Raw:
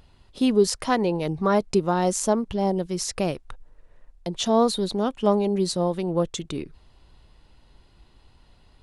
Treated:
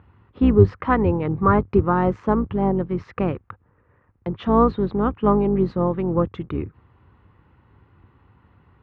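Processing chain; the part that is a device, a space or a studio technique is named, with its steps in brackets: sub-octave bass pedal (octaver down 2 oct, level 0 dB; speaker cabinet 69–2100 Hz, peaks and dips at 99 Hz +7 dB, 640 Hz -9 dB, 1200 Hz +6 dB); gain +3.5 dB

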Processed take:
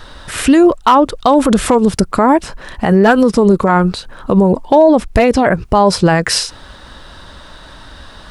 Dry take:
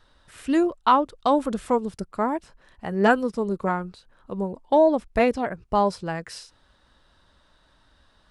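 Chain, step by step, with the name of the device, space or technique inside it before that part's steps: loud club master (compressor 1.5:1, threshold -29 dBFS, peak gain reduction 6 dB; hard clip -16 dBFS, distortion -25 dB; maximiser +25.5 dB); gain -1 dB

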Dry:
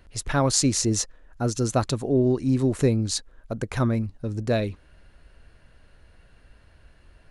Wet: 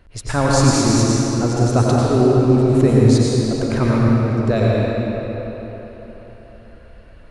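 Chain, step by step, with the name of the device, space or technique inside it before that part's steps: swimming-pool hall (reverb RT60 4.1 s, pre-delay 86 ms, DRR -5.5 dB; high shelf 4000 Hz -7 dB); gain +3 dB

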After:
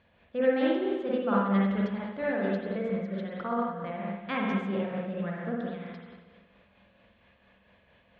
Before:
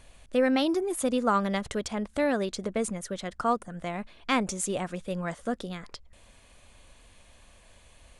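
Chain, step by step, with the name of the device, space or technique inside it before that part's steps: combo amplifier with spring reverb and tremolo (spring tank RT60 1.4 s, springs 46/59 ms, chirp 45 ms, DRR -5 dB; tremolo 4.4 Hz, depth 38%; speaker cabinet 84–3500 Hz, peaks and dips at 200 Hz +10 dB, 500 Hz +5 dB, 1700 Hz +5 dB); gain -9 dB

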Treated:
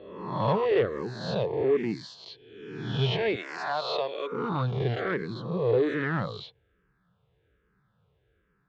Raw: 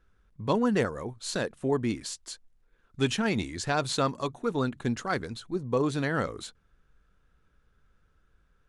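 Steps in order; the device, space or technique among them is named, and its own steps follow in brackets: spectral swells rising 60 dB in 1.08 s; 3.35–4.32 HPF 600 Hz 12 dB/oct; barber-pole phaser into a guitar amplifier (endless phaser -1.2 Hz; soft clip -20 dBFS, distortion -18 dB; speaker cabinet 100–3600 Hz, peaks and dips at 120 Hz +7 dB, 180 Hz +4 dB, 250 Hz -8 dB, 430 Hz +4 dB, 1400 Hz -7 dB, 2500 Hz -4 dB); gain +2.5 dB

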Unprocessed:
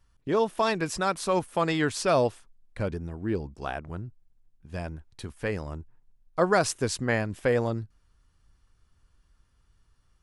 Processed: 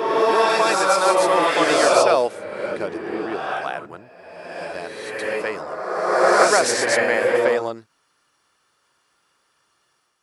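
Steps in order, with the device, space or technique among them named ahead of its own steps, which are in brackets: ghost voice (reverse; reverb RT60 1.9 s, pre-delay 0.106 s, DRR -4 dB; reverse; HPF 460 Hz 12 dB/oct); gain +6 dB

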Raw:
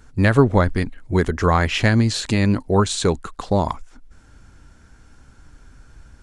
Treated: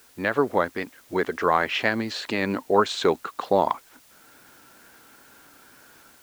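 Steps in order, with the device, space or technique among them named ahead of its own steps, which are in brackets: dictaphone (BPF 370–3500 Hz; AGC gain up to 8.5 dB; wow and flutter; white noise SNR 29 dB); gain -4.5 dB

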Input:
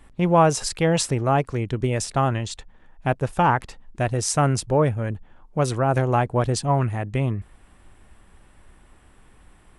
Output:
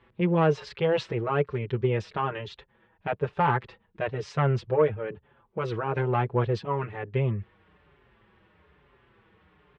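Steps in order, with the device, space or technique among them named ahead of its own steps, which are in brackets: barber-pole flanger into a guitar amplifier (endless flanger 5.5 ms -1.1 Hz; soft clip -12 dBFS, distortion -19 dB; speaker cabinet 100–3500 Hz, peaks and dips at 270 Hz -10 dB, 420 Hz +7 dB, 720 Hz -6 dB)

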